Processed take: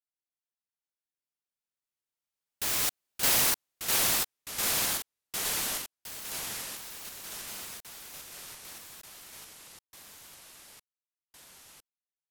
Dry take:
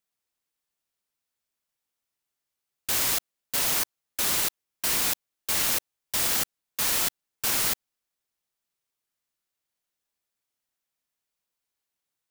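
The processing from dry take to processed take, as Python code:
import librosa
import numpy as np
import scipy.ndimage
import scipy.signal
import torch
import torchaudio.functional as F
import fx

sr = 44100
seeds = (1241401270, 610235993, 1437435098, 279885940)

y = fx.doppler_pass(x, sr, speed_mps=33, closest_m=12.0, pass_at_s=3.21)
y = fx.echo_pitch(y, sr, ms=256, semitones=-2, count=3, db_per_echo=-3.0)
y = y * librosa.db_to_amplitude(1.0)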